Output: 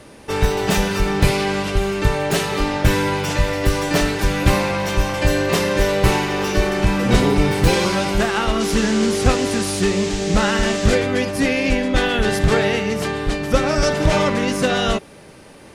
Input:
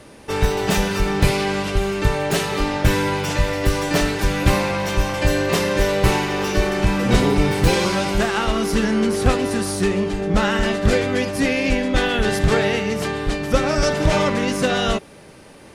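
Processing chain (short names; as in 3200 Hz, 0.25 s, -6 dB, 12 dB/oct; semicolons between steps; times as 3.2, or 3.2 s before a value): 8.59–10.94 band noise 1800–7600 Hz -33 dBFS; gain +1 dB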